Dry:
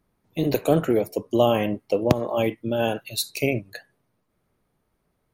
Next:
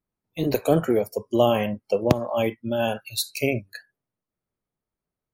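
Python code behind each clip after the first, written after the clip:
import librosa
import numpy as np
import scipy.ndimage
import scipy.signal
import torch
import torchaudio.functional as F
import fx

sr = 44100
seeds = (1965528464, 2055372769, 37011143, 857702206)

y = fx.noise_reduce_blind(x, sr, reduce_db=16)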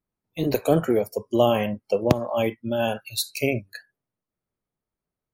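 y = x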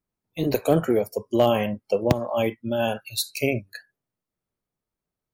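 y = np.clip(x, -10.0 ** (-8.5 / 20.0), 10.0 ** (-8.5 / 20.0))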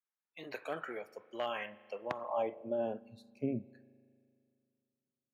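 y = fx.rev_spring(x, sr, rt60_s=2.4, pass_ms=(38,), chirp_ms=65, drr_db=19.0)
y = fx.filter_sweep_bandpass(y, sr, from_hz=1700.0, to_hz=220.0, start_s=1.98, end_s=3.17, q=2.0)
y = F.gain(torch.from_numpy(y), -4.5).numpy()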